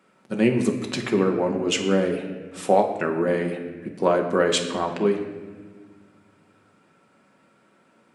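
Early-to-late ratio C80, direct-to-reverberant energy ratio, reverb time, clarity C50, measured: 9.0 dB, 2.0 dB, 1.5 s, 7.5 dB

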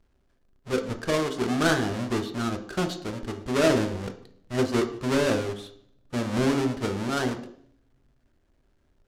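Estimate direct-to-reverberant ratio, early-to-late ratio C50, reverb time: 5.0 dB, 11.5 dB, 0.60 s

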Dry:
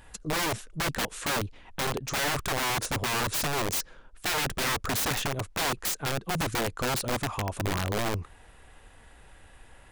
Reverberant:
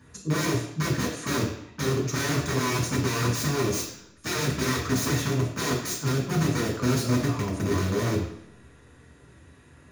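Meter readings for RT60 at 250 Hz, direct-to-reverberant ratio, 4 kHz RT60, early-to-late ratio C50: 0.80 s, -5.5 dB, 0.70 s, 5.0 dB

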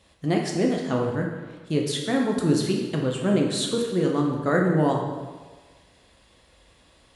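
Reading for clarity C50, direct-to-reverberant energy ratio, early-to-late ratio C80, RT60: 3.0 dB, -0.5 dB, 5.5 dB, 1.4 s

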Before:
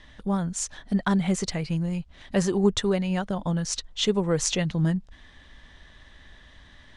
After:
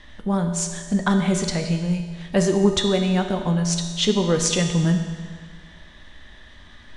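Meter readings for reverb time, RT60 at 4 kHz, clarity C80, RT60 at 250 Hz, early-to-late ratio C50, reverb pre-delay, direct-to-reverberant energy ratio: 1.7 s, 1.6 s, 8.0 dB, 1.7 s, 6.5 dB, 3 ms, 4.0 dB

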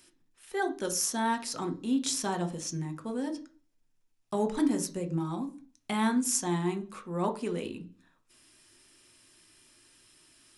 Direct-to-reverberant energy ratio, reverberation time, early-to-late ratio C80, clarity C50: 6.0 dB, 0.40 s, 20.5 dB, 15.0 dB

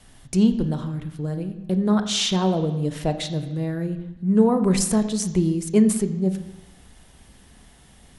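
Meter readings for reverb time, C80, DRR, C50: 1.0 s, 12.5 dB, 8.5 dB, 11.0 dB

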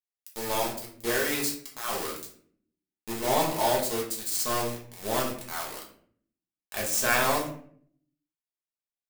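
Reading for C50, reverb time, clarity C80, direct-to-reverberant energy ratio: 5.5 dB, 0.55 s, 10.5 dB, -4.0 dB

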